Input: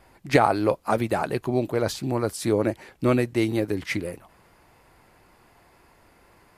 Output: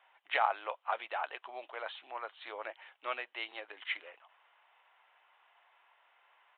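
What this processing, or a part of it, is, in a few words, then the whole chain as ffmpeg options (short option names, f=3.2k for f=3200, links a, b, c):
musical greeting card: -af "aresample=8000,aresample=44100,highpass=f=750:w=0.5412,highpass=f=750:w=1.3066,equalizer=f=3k:t=o:w=0.21:g=7.5,volume=-7dB"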